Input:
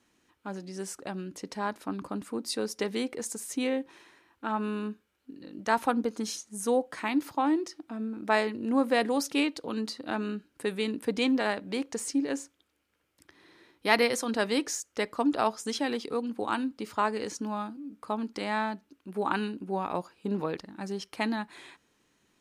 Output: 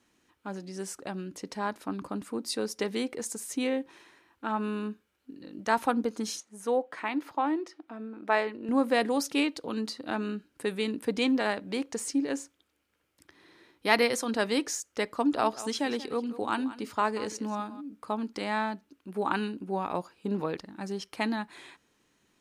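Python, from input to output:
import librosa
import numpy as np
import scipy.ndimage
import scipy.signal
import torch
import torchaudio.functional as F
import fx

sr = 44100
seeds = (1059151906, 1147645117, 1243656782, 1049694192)

y = fx.bass_treble(x, sr, bass_db=-11, treble_db=-11, at=(6.4, 8.69))
y = fx.echo_single(y, sr, ms=184, db=-15.5, at=(15.34, 17.8), fade=0.02)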